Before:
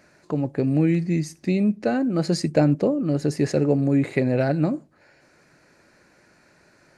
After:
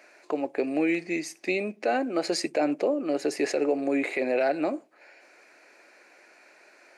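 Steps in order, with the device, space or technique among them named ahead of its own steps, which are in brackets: laptop speaker (high-pass 330 Hz 24 dB/octave; peaking EQ 720 Hz +5 dB 0.42 oct; peaking EQ 2.4 kHz +8.5 dB 0.56 oct; peak limiter -15.5 dBFS, peak gain reduction 9.5 dB)

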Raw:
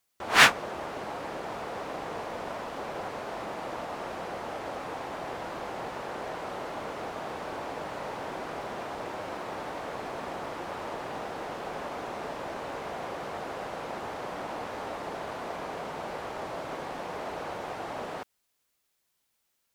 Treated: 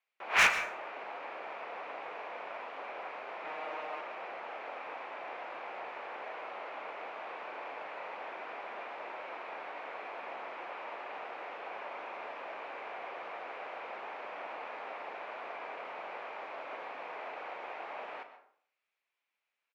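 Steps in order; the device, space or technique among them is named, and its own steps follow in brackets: megaphone (band-pass 550–2600 Hz; peaking EQ 2.4 kHz +9.5 dB 0.47 oct; hard clipper -13.5 dBFS, distortion -10 dB; doubling 37 ms -12 dB); 3.44–4.01 s: comb 6.5 ms, depth 94%; plate-style reverb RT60 0.58 s, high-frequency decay 0.65×, pre-delay 100 ms, DRR 11 dB; trim -5.5 dB

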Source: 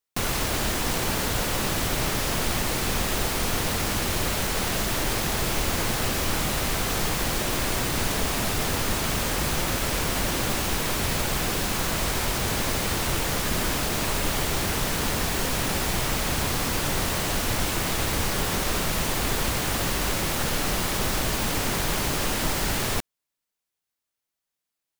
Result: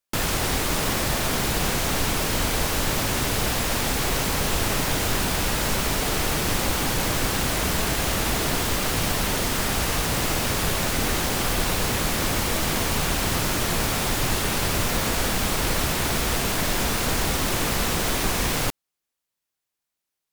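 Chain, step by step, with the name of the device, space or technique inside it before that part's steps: nightcore (tape speed +23%); trim +2 dB

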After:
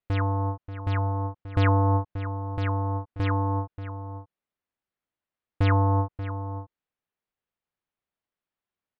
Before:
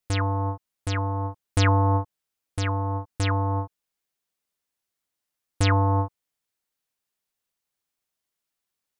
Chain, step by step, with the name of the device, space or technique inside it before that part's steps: shout across a valley (distance through air 380 m; echo from a far wall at 100 m, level -11 dB)

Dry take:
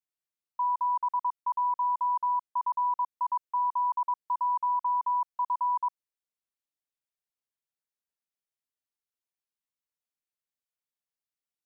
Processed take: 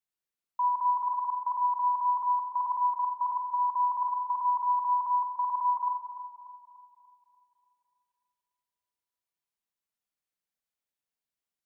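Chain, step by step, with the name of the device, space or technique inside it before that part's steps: dub delay into a spring reverb (filtered feedback delay 293 ms, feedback 66%, low-pass 1.1 kHz, level -9.5 dB; spring tank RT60 1 s, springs 43/48 ms, chirp 20 ms, DRR 4.5 dB)

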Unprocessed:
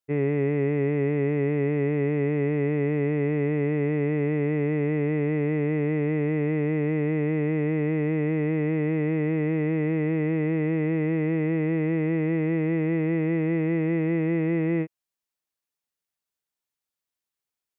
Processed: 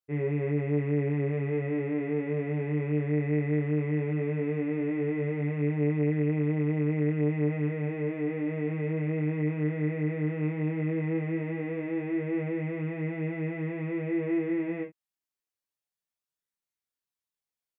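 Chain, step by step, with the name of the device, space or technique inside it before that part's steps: double-tracked vocal (doubling 27 ms -5 dB; chorus 0.15 Hz, delay 19.5 ms, depth 7 ms); trim -3.5 dB

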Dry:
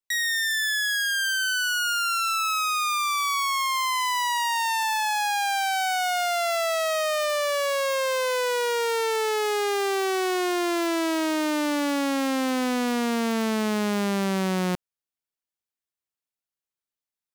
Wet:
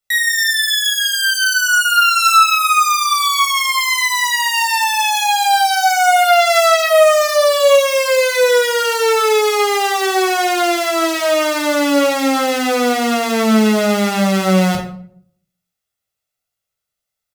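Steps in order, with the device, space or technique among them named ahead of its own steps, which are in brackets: microphone above a desk (comb 1.5 ms, depth 56%; reverberation RT60 0.60 s, pre-delay 10 ms, DRR 0.5 dB); trim +7 dB

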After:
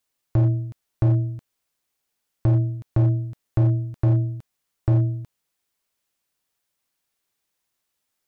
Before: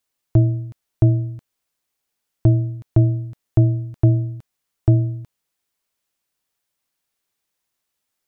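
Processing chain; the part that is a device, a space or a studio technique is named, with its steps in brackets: limiter into clipper (peak limiter -10 dBFS, peak gain reduction 5.5 dB; hard clipper -13.5 dBFS, distortion -18 dB)

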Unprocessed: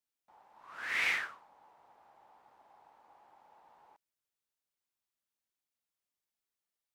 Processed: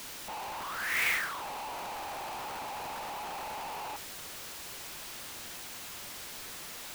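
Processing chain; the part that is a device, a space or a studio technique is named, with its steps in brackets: early CD player with a faulty converter (jump at every zero crossing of -33.5 dBFS; sampling jitter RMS 0.024 ms)

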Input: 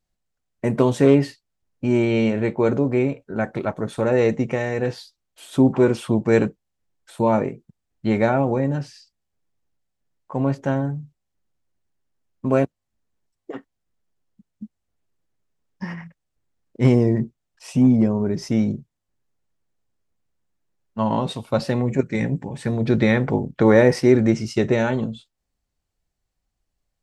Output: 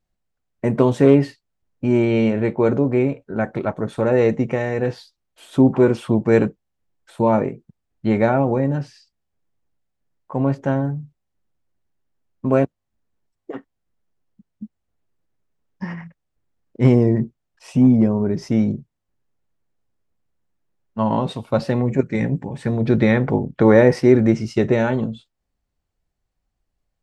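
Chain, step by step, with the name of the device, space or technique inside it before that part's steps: behind a face mask (treble shelf 3.4 kHz -8 dB); trim +2 dB

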